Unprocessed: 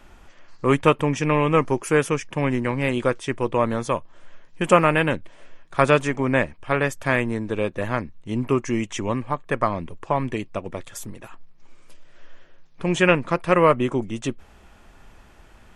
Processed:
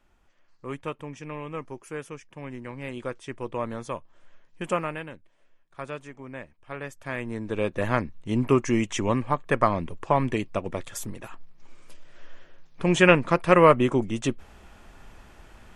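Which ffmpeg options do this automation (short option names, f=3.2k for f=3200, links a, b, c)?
-af "volume=10dB,afade=t=in:st=2.39:d=1.14:silence=0.446684,afade=t=out:st=4.63:d=0.47:silence=0.334965,afade=t=in:st=6.43:d=0.73:silence=0.421697,afade=t=in:st=7.16:d=0.75:silence=0.251189"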